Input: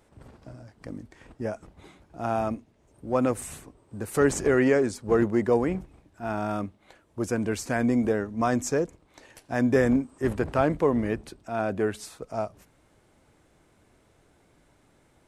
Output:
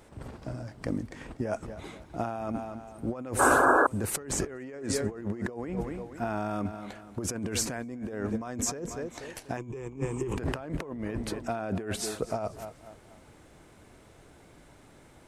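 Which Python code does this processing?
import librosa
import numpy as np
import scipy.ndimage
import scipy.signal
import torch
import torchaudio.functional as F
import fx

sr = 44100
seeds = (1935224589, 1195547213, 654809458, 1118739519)

p1 = x + fx.echo_feedback(x, sr, ms=243, feedback_pct=38, wet_db=-19, dry=0)
p2 = fx.over_compress(p1, sr, threshold_db=-34.0, ratio=-1.0)
p3 = fx.spec_paint(p2, sr, seeds[0], shape='noise', start_s=3.39, length_s=0.48, low_hz=240.0, high_hz=1700.0, level_db=-21.0)
y = fx.ripple_eq(p3, sr, per_octave=0.71, db=15, at=(9.57, 10.37))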